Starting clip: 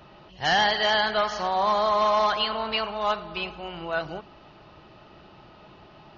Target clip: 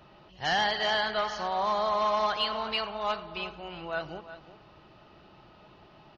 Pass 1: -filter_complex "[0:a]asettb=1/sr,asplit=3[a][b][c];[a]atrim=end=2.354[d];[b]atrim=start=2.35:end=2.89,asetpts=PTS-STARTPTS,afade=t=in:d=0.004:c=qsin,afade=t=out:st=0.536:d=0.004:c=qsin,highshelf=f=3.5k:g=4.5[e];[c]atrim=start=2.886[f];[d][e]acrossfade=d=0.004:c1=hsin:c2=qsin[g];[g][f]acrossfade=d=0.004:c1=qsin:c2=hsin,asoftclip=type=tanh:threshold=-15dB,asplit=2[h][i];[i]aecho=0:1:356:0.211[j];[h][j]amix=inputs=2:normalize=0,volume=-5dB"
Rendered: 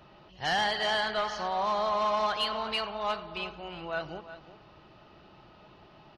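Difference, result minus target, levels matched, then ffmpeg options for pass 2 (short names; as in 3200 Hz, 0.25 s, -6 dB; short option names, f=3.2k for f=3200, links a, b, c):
soft clip: distortion +14 dB
-filter_complex "[0:a]asettb=1/sr,asplit=3[a][b][c];[a]atrim=end=2.354[d];[b]atrim=start=2.35:end=2.89,asetpts=PTS-STARTPTS,afade=t=in:d=0.004:c=qsin,afade=t=out:st=0.536:d=0.004:c=qsin,highshelf=f=3.5k:g=4.5[e];[c]atrim=start=2.886[f];[d][e]acrossfade=d=0.004:c1=hsin:c2=qsin[g];[g][f]acrossfade=d=0.004:c1=qsin:c2=hsin,asoftclip=type=tanh:threshold=-7dB,asplit=2[h][i];[i]aecho=0:1:356:0.211[j];[h][j]amix=inputs=2:normalize=0,volume=-5dB"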